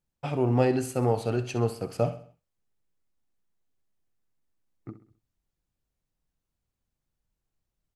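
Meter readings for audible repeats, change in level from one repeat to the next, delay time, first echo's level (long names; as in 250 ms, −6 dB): 4, −7.5 dB, 65 ms, −13.0 dB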